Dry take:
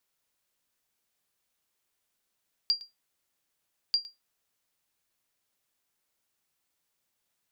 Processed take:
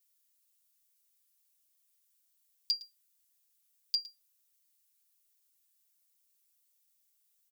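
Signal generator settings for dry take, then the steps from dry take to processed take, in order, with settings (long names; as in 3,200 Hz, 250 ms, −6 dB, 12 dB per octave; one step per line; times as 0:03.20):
ping with an echo 4,760 Hz, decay 0.18 s, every 1.24 s, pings 2, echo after 0.11 s, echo −18.5 dB −17 dBFS
first difference
comb filter 7.3 ms, depth 99%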